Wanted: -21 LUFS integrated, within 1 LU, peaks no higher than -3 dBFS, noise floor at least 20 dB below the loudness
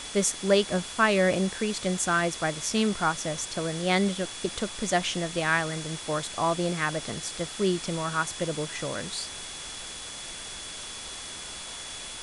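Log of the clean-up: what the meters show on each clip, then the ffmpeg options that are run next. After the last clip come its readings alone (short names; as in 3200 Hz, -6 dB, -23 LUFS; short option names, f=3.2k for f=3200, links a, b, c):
steady tone 3400 Hz; tone level -43 dBFS; noise floor -39 dBFS; noise floor target -49 dBFS; loudness -28.5 LUFS; peak -8.5 dBFS; loudness target -21.0 LUFS
-> -af "bandreject=f=3.4k:w=30"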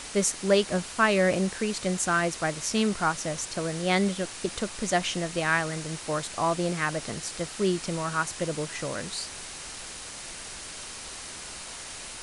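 steady tone none; noise floor -41 dBFS; noise floor target -49 dBFS
-> -af "afftdn=nr=8:nf=-41"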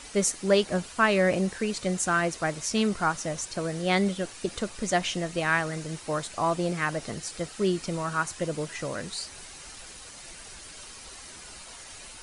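noise floor -45 dBFS; noise floor target -48 dBFS
-> -af "afftdn=nr=6:nf=-45"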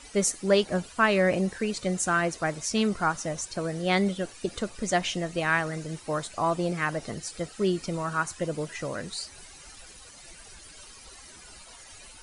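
noise floor -49 dBFS; loudness -28.0 LUFS; peak -8.5 dBFS; loudness target -21.0 LUFS
-> -af "volume=7dB,alimiter=limit=-3dB:level=0:latency=1"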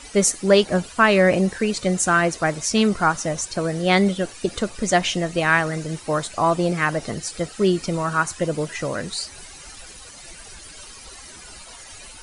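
loudness -21.0 LUFS; peak -3.0 dBFS; noise floor -42 dBFS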